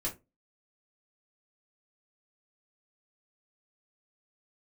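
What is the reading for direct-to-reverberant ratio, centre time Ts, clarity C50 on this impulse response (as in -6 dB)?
-5.5 dB, 16 ms, 14.0 dB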